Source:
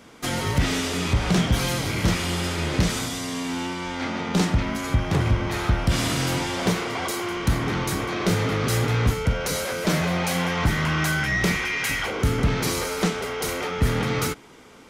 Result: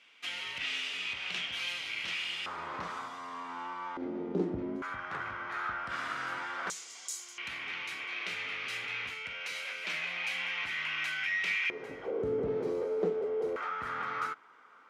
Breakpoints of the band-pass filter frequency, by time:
band-pass filter, Q 3.6
2.7 kHz
from 2.46 s 1.1 kHz
from 3.97 s 360 Hz
from 4.82 s 1.4 kHz
from 6.70 s 7 kHz
from 7.38 s 2.5 kHz
from 11.70 s 440 Hz
from 13.56 s 1.3 kHz

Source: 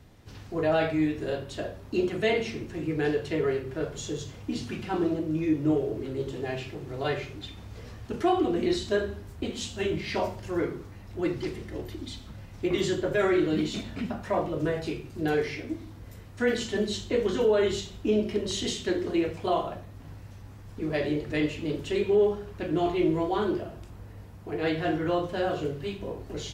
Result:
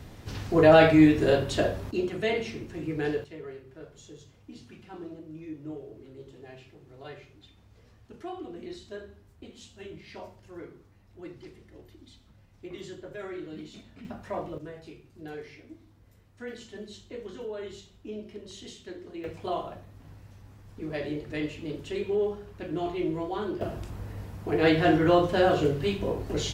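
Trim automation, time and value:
+8.5 dB
from 1.91 s -2.5 dB
from 3.24 s -14.5 dB
from 14.05 s -6.5 dB
from 14.58 s -14 dB
from 19.24 s -5 dB
from 23.61 s +6 dB

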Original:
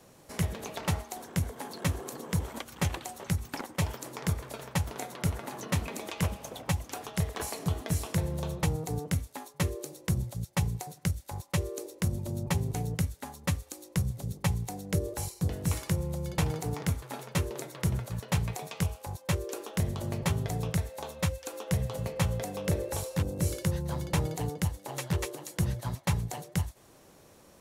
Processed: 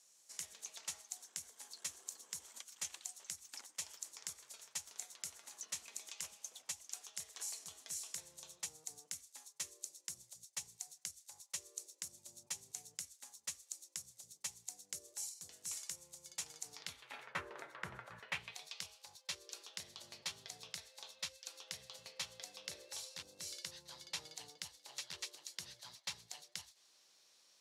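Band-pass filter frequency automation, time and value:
band-pass filter, Q 1.9
16.62 s 6.8 kHz
17.37 s 1.5 kHz
18.15 s 1.5 kHz
18.65 s 4.6 kHz

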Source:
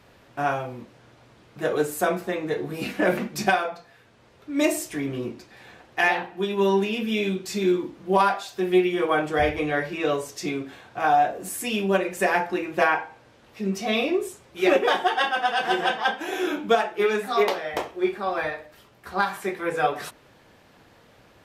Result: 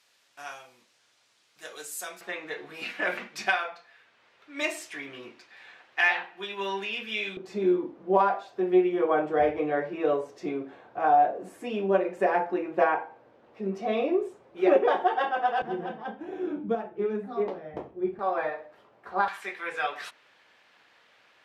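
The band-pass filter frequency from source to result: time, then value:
band-pass filter, Q 0.82
6.8 kHz
from 2.21 s 2.2 kHz
from 7.37 s 540 Hz
from 15.62 s 160 Hz
from 18.19 s 700 Hz
from 19.28 s 2.4 kHz

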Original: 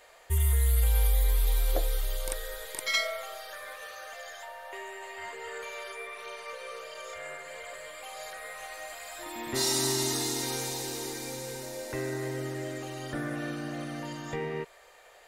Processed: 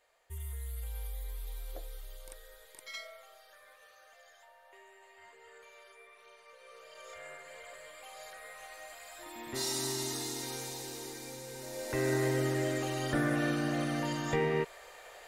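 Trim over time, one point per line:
6.51 s -16 dB
7.12 s -7 dB
11.49 s -7 dB
12.12 s +4 dB

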